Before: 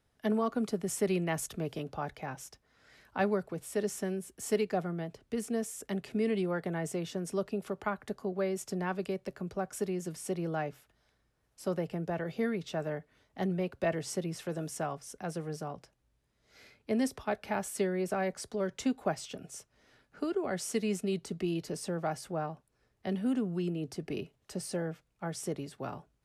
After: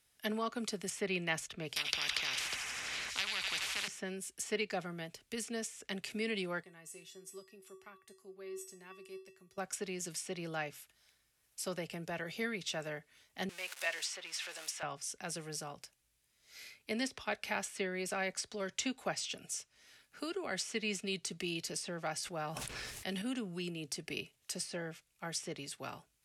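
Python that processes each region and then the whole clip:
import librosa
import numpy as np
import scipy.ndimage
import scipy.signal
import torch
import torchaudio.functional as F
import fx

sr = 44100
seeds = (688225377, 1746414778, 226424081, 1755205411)

y = fx.chain(x, sr, fx.echo_wet_highpass(ms=84, feedback_pct=83, hz=2200.0, wet_db=-11.0),
    fx.spectral_comp(ratio=10.0), at=(1.76, 3.88))
y = fx.chain(y, sr, fx.peak_eq(hz=110.0, db=5.0, octaves=1.1),
    fx.comb_fb(f0_hz=380.0, decay_s=0.34, harmonics='odd', damping=0.0, mix_pct=90), at=(6.63, 9.58))
y = fx.chain(y, sr, fx.zero_step(step_db=-43.0),
    fx.highpass(hz=870.0, slope=12), at=(13.49, 14.83))
y = fx.chain(y, sr, fx.high_shelf(hz=9100.0, db=10.5),
    fx.sustainer(db_per_s=25.0), at=(22.23, 23.22))
y = F.preemphasis(torch.from_numpy(y), 0.9).numpy()
y = fx.env_lowpass_down(y, sr, base_hz=2900.0, full_db=-39.0)
y = fx.peak_eq(y, sr, hz=2400.0, db=5.0, octaves=0.96)
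y = y * librosa.db_to_amplitude(11.0)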